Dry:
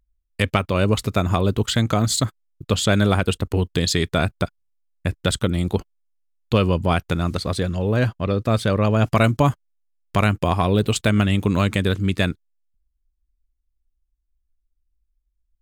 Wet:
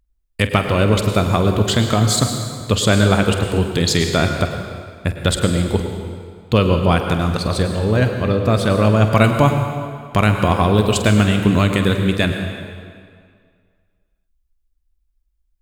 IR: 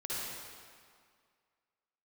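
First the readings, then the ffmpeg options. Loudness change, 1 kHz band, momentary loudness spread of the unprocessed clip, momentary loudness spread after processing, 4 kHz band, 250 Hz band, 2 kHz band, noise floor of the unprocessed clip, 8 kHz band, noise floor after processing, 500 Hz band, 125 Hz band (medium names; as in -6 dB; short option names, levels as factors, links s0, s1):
+4.0 dB, +4.5 dB, 7 LU, 11 LU, +4.0 dB, +4.0 dB, +4.5 dB, -73 dBFS, +4.5 dB, -67 dBFS, +4.5 dB, +4.0 dB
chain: -filter_complex "[0:a]asplit=2[s0][s1];[1:a]atrim=start_sample=2205,highshelf=f=12000:g=6.5,adelay=47[s2];[s1][s2]afir=irnorm=-1:irlink=0,volume=0.376[s3];[s0][s3]amix=inputs=2:normalize=0,volume=1.41"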